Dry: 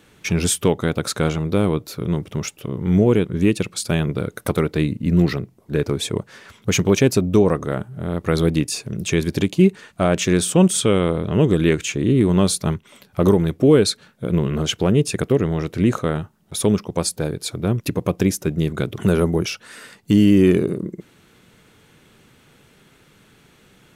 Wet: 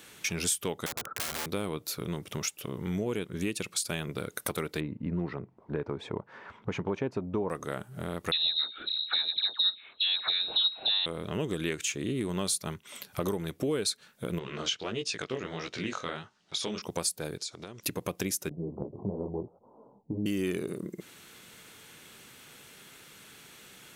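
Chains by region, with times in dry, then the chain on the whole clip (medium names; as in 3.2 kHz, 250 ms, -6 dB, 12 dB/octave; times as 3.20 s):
0.86–1.46 s: Chebyshev low-pass 1.4 kHz, order 5 + integer overflow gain 22.5 dB
4.80–7.50 s: low-pass 1.3 kHz + peaking EQ 920 Hz +6.5 dB 0.39 oct
8.31–11.06 s: hum notches 60/120/180/240/300/360/420 Hz + frequency inversion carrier 4 kHz + phase dispersion lows, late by 82 ms, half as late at 1.4 kHz
14.39–16.82 s: low-pass 5.5 kHz 24 dB/octave + tilt EQ +2 dB/octave + chorus 1.5 Hz, delay 15.5 ms, depth 7.6 ms
17.38–17.83 s: low-pass 6.5 kHz 24 dB/octave + tone controls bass -7 dB, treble +10 dB + compression 12:1, threshold -35 dBFS
18.49–20.26 s: steep low-pass 970 Hz 72 dB/octave + detune thickener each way 29 cents
whole clip: tilt EQ +2.5 dB/octave; compression 2.5:1, threshold -34 dBFS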